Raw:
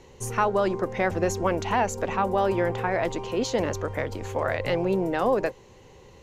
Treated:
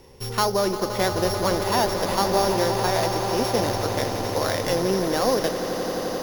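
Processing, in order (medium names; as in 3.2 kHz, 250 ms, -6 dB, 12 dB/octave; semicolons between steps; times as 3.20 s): sorted samples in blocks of 8 samples; echo with a slow build-up 87 ms, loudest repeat 8, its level -13 dB; trim +1 dB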